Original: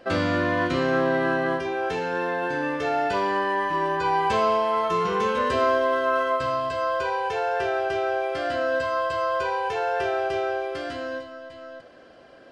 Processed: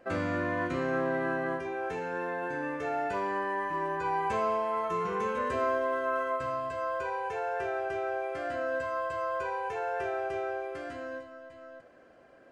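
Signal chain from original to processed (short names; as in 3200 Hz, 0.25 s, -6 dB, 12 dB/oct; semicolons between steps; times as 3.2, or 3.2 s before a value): band shelf 4000 Hz -8.5 dB 1.1 oct; gain -7.5 dB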